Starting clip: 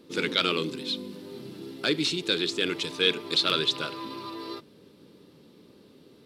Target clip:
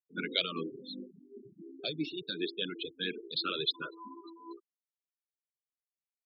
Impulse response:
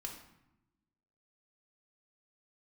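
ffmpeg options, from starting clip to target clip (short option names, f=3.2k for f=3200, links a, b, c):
-filter_complex "[0:a]aecho=1:1:60|120:0.075|0.0225,acrossover=split=150|6600[a][b][c];[c]acompressor=threshold=-59dB:ratio=6[d];[a][b][d]amix=inputs=3:normalize=0,afftfilt=real='re*gte(hypot(re,im),0.0562)':imag='im*gte(hypot(re,im),0.0562)':win_size=1024:overlap=0.75,tremolo=f=4.9:d=0.45,asplit=2[e][f];[f]afreqshift=2.8[g];[e][g]amix=inputs=2:normalize=1,volume=-3dB"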